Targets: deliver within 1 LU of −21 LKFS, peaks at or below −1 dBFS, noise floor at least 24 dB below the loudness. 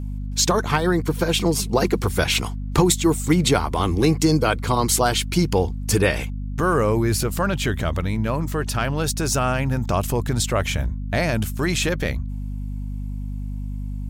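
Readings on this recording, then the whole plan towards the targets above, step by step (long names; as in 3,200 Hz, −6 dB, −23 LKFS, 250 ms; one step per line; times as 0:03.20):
mains hum 50 Hz; hum harmonics up to 250 Hz; level of the hum −26 dBFS; integrated loudness −22.0 LKFS; sample peak −5.0 dBFS; target loudness −21.0 LKFS
→ hum removal 50 Hz, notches 5
level +1 dB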